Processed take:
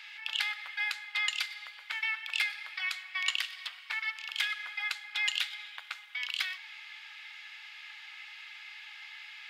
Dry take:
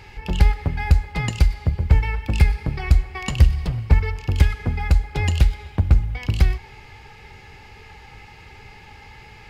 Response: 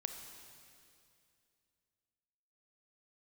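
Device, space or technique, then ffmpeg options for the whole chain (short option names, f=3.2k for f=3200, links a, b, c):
headphones lying on a table: -af "highpass=f=1.4k:w=0.5412,highpass=f=1.4k:w=1.3066,bass=f=250:g=-6,treble=f=4k:g=-6,equalizer=f=3.5k:t=o:w=0.47:g=9.5"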